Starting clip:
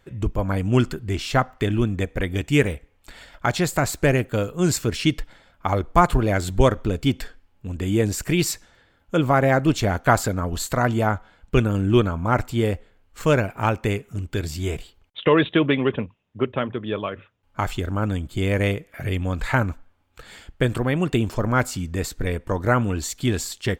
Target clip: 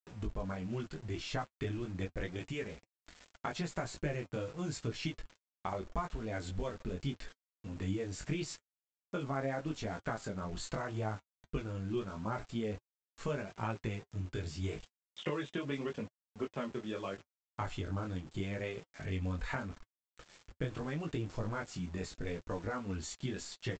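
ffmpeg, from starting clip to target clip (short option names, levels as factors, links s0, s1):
-af "highshelf=f=3000:g=-2,acompressor=threshold=0.0794:ratio=12,flanger=delay=17.5:depth=4.8:speed=0.8,aresample=16000,aeval=exprs='val(0)*gte(abs(val(0)),0.0075)':c=same,aresample=44100,flanger=delay=3.9:depth=3.1:regen=-52:speed=0.31:shape=triangular,volume=0.668"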